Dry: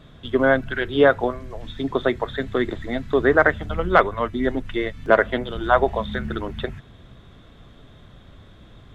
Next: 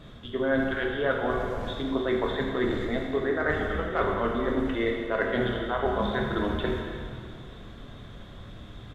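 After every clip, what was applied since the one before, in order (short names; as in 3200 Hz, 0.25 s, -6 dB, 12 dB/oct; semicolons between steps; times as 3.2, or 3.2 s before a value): reverse; compressor 6:1, threshold -26 dBFS, peak gain reduction 16 dB; reverse; doubler 26 ms -11 dB; plate-style reverb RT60 2.4 s, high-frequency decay 0.85×, DRR 0 dB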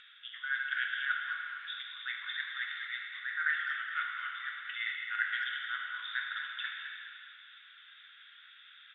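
Chebyshev band-pass 1400–3600 Hz, order 4; upward compressor, threshold -54 dBFS; on a send: tape echo 0.21 s, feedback 49%, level -7 dB, low-pass 2500 Hz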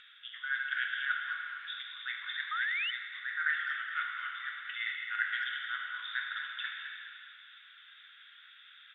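painted sound rise, 2.51–2.91, 1200–3100 Hz -34 dBFS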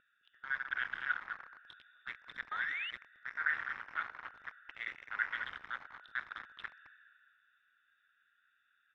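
Wiener smoothing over 41 samples; LPF 1400 Hz 6 dB/oct; gain +3 dB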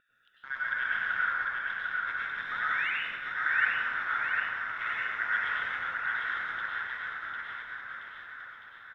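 on a send: bouncing-ball echo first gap 0.75 s, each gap 0.9×, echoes 5; on the sum: plate-style reverb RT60 1.6 s, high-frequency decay 0.5×, pre-delay 85 ms, DRR -6.5 dB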